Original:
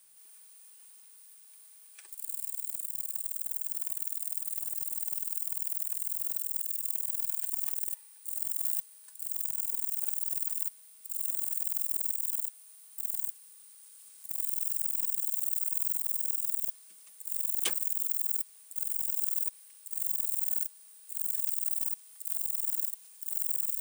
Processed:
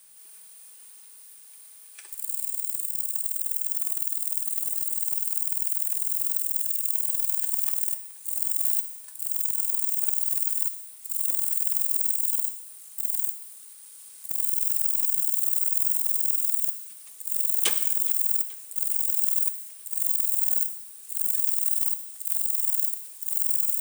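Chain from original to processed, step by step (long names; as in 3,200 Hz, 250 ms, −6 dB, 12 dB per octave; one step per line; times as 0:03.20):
reverb whose tail is shaped and stops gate 300 ms falling, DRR 8.5 dB
feedback echo with a swinging delay time 428 ms, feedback 59%, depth 210 cents, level −21.5 dB
level +6.5 dB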